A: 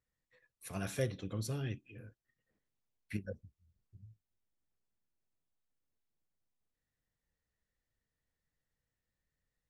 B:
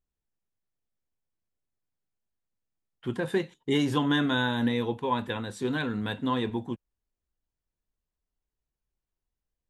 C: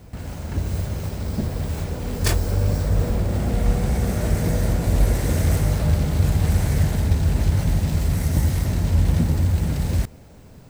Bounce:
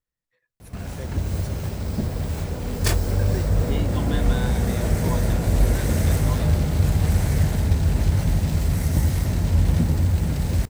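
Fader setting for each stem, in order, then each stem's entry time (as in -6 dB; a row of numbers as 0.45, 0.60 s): -3.0, -7.5, -0.5 dB; 0.00, 0.00, 0.60 s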